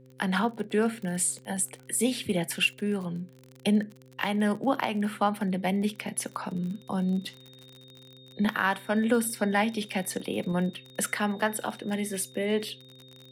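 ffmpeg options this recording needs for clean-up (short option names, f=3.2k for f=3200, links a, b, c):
-af "adeclick=t=4,bandreject=f=129.4:t=h:w=4,bandreject=f=258.8:t=h:w=4,bandreject=f=388.2:t=h:w=4,bandreject=f=517.6:t=h:w=4,bandreject=f=3.7k:w=30"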